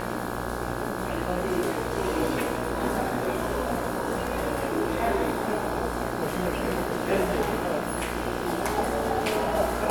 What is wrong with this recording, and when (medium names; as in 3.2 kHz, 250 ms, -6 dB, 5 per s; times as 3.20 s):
buzz 60 Hz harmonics 28 -33 dBFS